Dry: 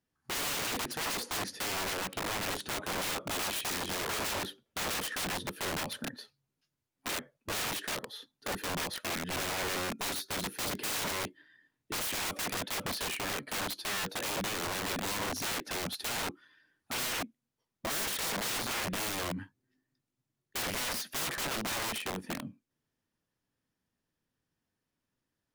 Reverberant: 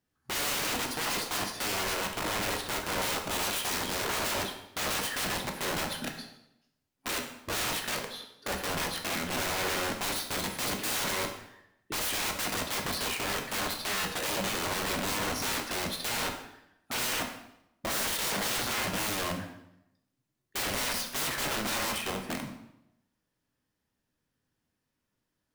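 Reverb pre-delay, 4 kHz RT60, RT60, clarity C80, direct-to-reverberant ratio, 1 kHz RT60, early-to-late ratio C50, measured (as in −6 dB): 9 ms, 0.65 s, 0.80 s, 9.5 dB, 3.0 dB, 0.80 s, 7.5 dB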